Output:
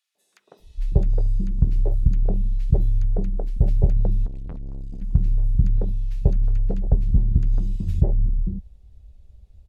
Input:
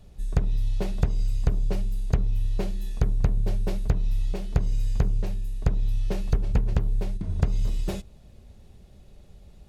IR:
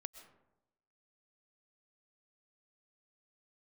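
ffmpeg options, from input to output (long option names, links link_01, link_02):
-filter_complex "[0:a]acrossover=split=310|1400[link_01][link_02][link_03];[link_02]adelay=150[link_04];[link_01]adelay=590[link_05];[link_05][link_04][link_03]amix=inputs=3:normalize=0,afwtdn=0.0316,asettb=1/sr,asplit=3[link_06][link_07][link_08];[link_06]atrim=end=4.264[link_09];[link_07]atrim=start=4.26:end=5.02,asetpts=PTS-STARTPTS,afade=type=in:duration=0.004:curve=qsin,afade=type=out:start_time=0.756:duration=0.004:curve=qsin,aeval=exprs='(tanh(56.2*val(0)+0.3)-tanh(0.3))/56.2':channel_layout=same[link_10];[link_08]atrim=start=5.016[link_11];[link_09][link_10]acrossfade=duration=0.004:curve1=hsin:curve2=qsin[link_12];[link_12][link_11]acrossfade=duration=0.004:curve1=qsin:curve2=hsin,volume=5dB"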